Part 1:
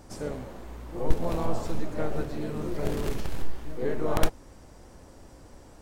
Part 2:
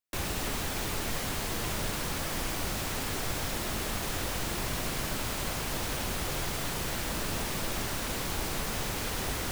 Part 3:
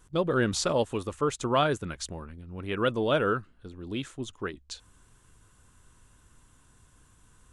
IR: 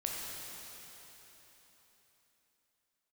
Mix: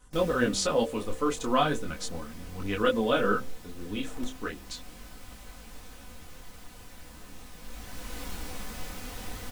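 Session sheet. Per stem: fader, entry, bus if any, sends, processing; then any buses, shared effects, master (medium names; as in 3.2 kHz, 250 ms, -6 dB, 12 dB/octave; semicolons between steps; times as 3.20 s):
-17.0 dB, 0.00 s, no send, none
-5.5 dB, 0.00 s, no send, bass shelf 150 Hz +7 dB; auto duck -9 dB, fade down 0.55 s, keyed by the third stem
+3.0 dB, 0.00 s, no send, none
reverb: none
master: comb 4 ms, depth 56%; de-hum 64.85 Hz, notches 9; detune thickener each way 13 cents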